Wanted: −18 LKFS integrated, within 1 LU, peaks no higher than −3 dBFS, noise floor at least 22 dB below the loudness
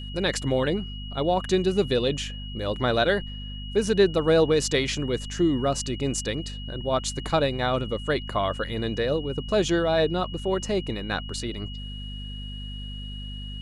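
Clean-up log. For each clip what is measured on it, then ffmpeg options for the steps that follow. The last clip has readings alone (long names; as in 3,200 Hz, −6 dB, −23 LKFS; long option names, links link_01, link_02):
mains hum 50 Hz; hum harmonics up to 250 Hz; level of the hum −33 dBFS; interfering tone 2,900 Hz; level of the tone −40 dBFS; integrated loudness −25.5 LKFS; sample peak −8.5 dBFS; target loudness −18.0 LKFS
→ -af "bandreject=frequency=50:width_type=h:width=4,bandreject=frequency=100:width_type=h:width=4,bandreject=frequency=150:width_type=h:width=4,bandreject=frequency=200:width_type=h:width=4,bandreject=frequency=250:width_type=h:width=4"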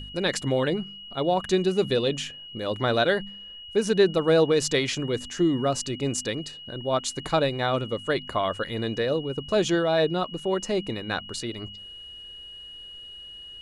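mains hum none found; interfering tone 2,900 Hz; level of the tone −40 dBFS
→ -af "bandreject=frequency=2900:width=30"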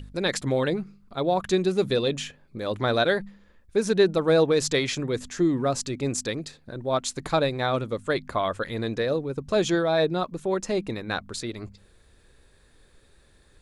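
interfering tone none found; integrated loudness −26.0 LKFS; sample peak −10.0 dBFS; target loudness −18.0 LKFS
→ -af "volume=8dB,alimiter=limit=-3dB:level=0:latency=1"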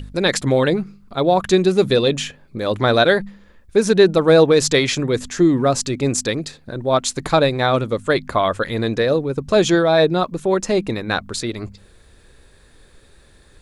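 integrated loudness −18.0 LKFS; sample peak −3.0 dBFS; background noise floor −50 dBFS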